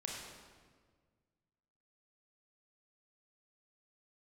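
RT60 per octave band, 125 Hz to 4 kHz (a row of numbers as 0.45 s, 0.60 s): 2.3 s, 2.0 s, 1.8 s, 1.5 s, 1.3 s, 1.2 s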